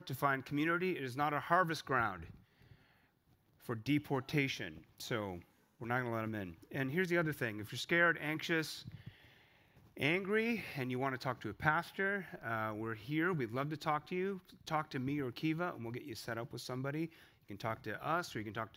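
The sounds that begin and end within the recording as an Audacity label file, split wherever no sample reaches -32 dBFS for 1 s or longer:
3.690000	8.610000	sound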